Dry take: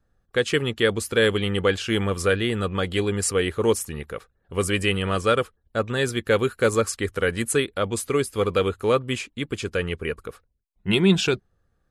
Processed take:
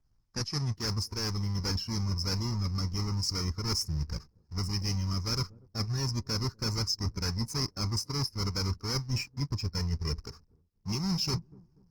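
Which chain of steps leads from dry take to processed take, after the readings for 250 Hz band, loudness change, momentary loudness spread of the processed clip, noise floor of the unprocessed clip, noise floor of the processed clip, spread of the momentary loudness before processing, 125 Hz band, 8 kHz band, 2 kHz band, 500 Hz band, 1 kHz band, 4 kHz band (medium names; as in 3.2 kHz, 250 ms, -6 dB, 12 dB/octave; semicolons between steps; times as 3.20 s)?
-10.0 dB, -8.5 dB, 6 LU, -70 dBFS, -69 dBFS, 9 LU, -1.5 dB, -6.5 dB, -18.5 dB, -21.5 dB, -12.0 dB, -4.0 dB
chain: square wave that keeps the level; FFT filter 140 Hz 0 dB, 600 Hz -18 dB, 940 Hz -3 dB, 1.4 kHz -10 dB, 2.2 kHz -11 dB, 3.5 kHz -21 dB, 5.2 kHz +12 dB, 7.9 kHz -17 dB, 13 kHz -14 dB; feedback echo behind a low-pass 243 ms, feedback 34%, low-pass 480 Hz, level -23.5 dB; spectral noise reduction 11 dB; reverse; compression 16:1, threshold -31 dBFS, peak gain reduction 18.5 dB; reverse; dynamic bell 690 Hz, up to -4 dB, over -52 dBFS, Q 0.78; in parallel at -6 dB: hard clipper -37 dBFS, distortion -8 dB; on the sum: trim +2 dB; Opus 20 kbps 48 kHz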